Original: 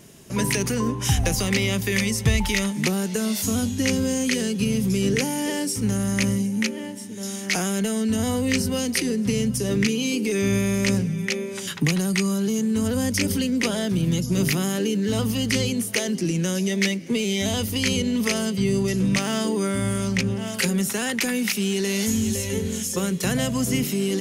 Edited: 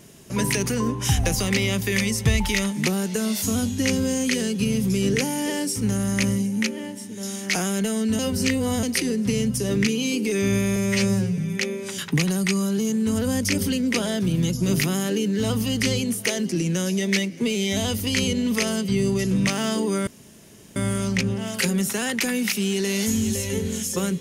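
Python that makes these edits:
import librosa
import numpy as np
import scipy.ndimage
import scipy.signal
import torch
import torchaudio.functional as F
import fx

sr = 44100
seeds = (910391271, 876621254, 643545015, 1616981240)

y = fx.edit(x, sr, fx.reverse_span(start_s=8.19, length_s=0.64),
    fx.stretch_span(start_s=10.76, length_s=0.31, factor=2.0),
    fx.insert_room_tone(at_s=19.76, length_s=0.69), tone=tone)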